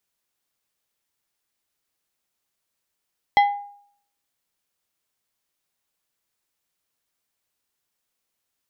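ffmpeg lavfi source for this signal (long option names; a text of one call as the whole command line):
ffmpeg -f lavfi -i "aevalsrc='0.316*pow(10,-3*t/0.61)*sin(2*PI*813*t)+0.133*pow(10,-3*t/0.321)*sin(2*PI*2032.5*t)+0.0562*pow(10,-3*t/0.231)*sin(2*PI*3252*t)+0.0237*pow(10,-3*t/0.198)*sin(2*PI*4065*t)+0.01*pow(10,-3*t/0.165)*sin(2*PI*5284.5*t)':duration=0.89:sample_rate=44100" out.wav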